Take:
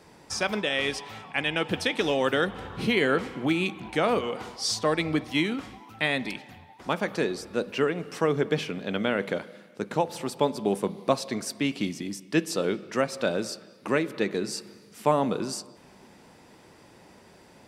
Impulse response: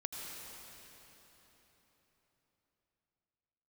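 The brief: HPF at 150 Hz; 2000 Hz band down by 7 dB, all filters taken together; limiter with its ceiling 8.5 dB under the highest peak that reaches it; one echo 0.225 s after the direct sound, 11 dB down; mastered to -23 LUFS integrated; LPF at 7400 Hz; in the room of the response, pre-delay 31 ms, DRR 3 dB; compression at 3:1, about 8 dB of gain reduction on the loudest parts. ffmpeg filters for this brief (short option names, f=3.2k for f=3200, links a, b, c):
-filter_complex "[0:a]highpass=150,lowpass=7.4k,equalizer=f=2k:t=o:g=-9,acompressor=threshold=-29dB:ratio=3,alimiter=level_in=0.5dB:limit=-24dB:level=0:latency=1,volume=-0.5dB,aecho=1:1:225:0.282,asplit=2[a][b];[1:a]atrim=start_sample=2205,adelay=31[c];[b][c]afir=irnorm=-1:irlink=0,volume=-3.5dB[d];[a][d]amix=inputs=2:normalize=0,volume=11.5dB"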